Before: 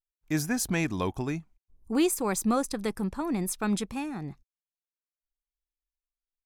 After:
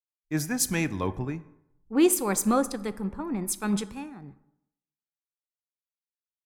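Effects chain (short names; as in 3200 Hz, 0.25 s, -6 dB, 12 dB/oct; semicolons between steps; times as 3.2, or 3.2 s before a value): notch 680 Hz, Q 13; plate-style reverb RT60 1.6 s, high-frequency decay 0.45×, DRR 13 dB; three-band expander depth 100%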